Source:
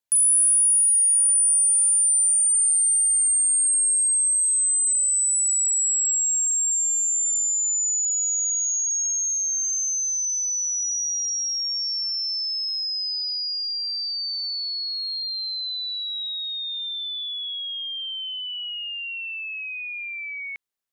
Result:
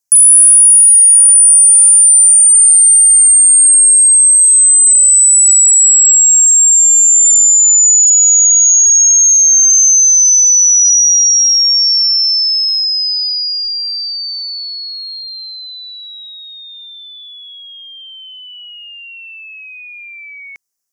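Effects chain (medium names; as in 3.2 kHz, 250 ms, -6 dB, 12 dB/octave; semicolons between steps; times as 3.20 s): resonant high shelf 4.6 kHz +8 dB, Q 3; trim +3.5 dB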